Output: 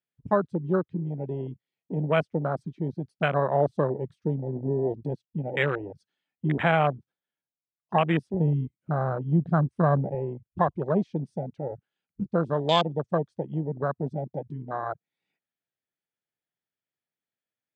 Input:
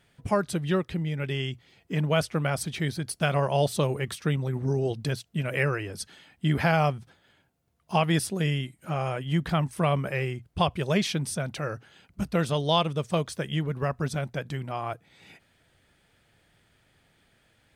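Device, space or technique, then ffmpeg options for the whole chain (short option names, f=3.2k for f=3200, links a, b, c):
over-cleaned archive recording: -filter_complex "[0:a]afwtdn=0.0355,highpass=170,lowpass=6k,afwtdn=0.0158,asettb=1/sr,asplit=3[a][b][c];[a]atrim=end=8.344[d];[b]atrim=start=8.34:end=10.15,asetpts=PTS-STARTPTS,afade=t=in:d=0.004:c=qsin,afade=t=out:st=1.806:d=0.004:c=qsin,equalizer=f=74:w=0.83:g=13.5[e];[c]atrim=start=10.146[f];[d][e]acrossfade=d=0.004:c1=hsin:c2=qsin[g];[g][f]acrossfade=d=0.004:c1=qsin:c2=hsin,volume=2dB"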